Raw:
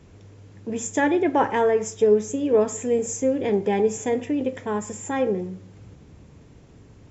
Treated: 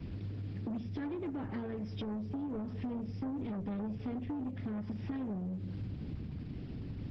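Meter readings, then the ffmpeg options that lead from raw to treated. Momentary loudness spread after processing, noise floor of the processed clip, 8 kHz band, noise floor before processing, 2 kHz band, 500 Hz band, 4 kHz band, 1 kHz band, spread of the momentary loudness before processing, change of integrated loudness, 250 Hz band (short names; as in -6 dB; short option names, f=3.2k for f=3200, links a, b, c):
4 LU, -43 dBFS, n/a, -50 dBFS, -22.0 dB, -24.5 dB, -14.0 dB, -22.5 dB, 9 LU, -16.5 dB, -10.5 dB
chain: -filter_complex "[0:a]equalizer=f=250:t=o:w=1:g=4,equalizer=f=500:t=o:w=1:g=-10,equalizer=f=1k:t=o:w=1:g=-9,equalizer=f=2k:t=o:w=1:g=-4,equalizer=f=4k:t=o:w=1:g=-5,acrossover=split=180[a][b];[b]acompressor=threshold=-40dB:ratio=6[c];[a][c]amix=inputs=2:normalize=0,aresample=11025,asoftclip=type=tanh:threshold=-35.5dB,aresample=44100,acompressor=threshold=-45dB:ratio=6,volume=9dB" -ar 48000 -c:a libopus -b:a 10k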